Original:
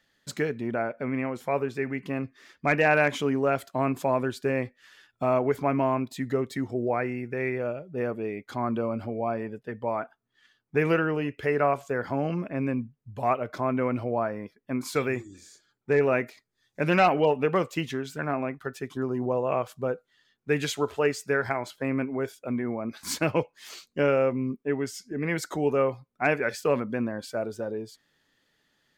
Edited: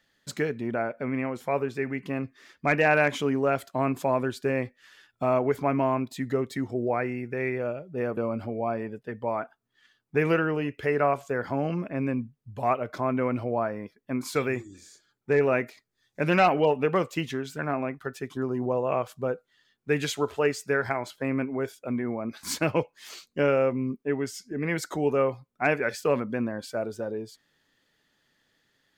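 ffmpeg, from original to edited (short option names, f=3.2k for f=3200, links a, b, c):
-filter_complex "[0:a]asplit=2[a][b];[a]atrim=end=8.172[c];[b]atrim=start=8.768[d];[c][d]acrossfade=d=0.004:c1=hsin:c2=hsin"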